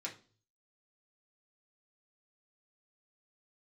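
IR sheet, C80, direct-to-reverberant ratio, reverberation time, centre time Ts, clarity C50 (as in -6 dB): 18.0 dB, -3.5 dB, 0.40 s, 16 ms, 12.0 dB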